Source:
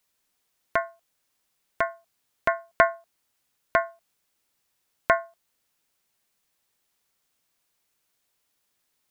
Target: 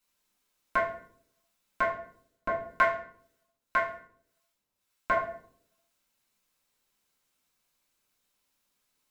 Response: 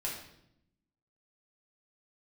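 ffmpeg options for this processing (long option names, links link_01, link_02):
-filter_complex "[0:a]asettb=1/sr,asplit=3[link_01][link_02][link_03];[link_01]atrim=end=1.894[link_04];[link_02]atrim=start=1.89:end=5.16,asetpts=PTS-STARTPTS,afade=type=in:duration=0.004:curve=qsin,afade=type=out:start_time=3.266:duration=0.004:curve=qsin,acrossover=split=840[link_05][link_06];[link_05]aeval=exprs='val(0)*(1-0.7/2+0.7/2*cos(2*PI*1.8*n/s))':channel_layout=same[link_07];[link_06]aeval=exprs='val(0)*(1-0.7/2-0.7/2*cos(2*PI*1.8*n/s))':channel_layout=same[link_08];[link_07][link_08]amix=inputs=2:normalize=0[link_09];[link_03]atrim=start=5.156[link_10];[link_04][link_09]acrossfade=duration=0.004:curve1=hsin:curve2=qsin[link_11];[link_11][link_10]acrossfade=duration=0.004:curve1=qsin:curve2=hsin[link_12];[1:a]atrim=start_sample=2205,asetrate=66150,aresample=44100[link_13];[link_12][link_13]afir=irnorm=-1:irlink=0"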